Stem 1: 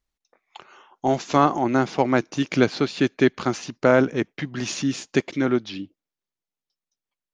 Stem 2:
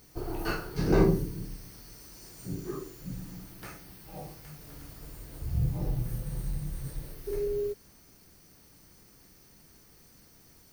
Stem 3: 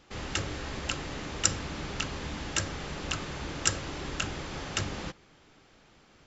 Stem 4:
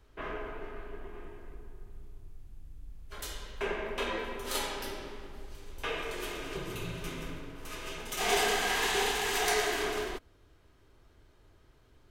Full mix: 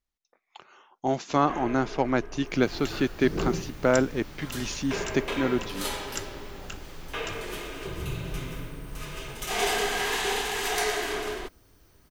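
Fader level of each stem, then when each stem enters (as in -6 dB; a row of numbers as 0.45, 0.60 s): -5.0, -7.0, -9.0, +1.5 dB; 0.00, 2.45, 2.50, 1.30 s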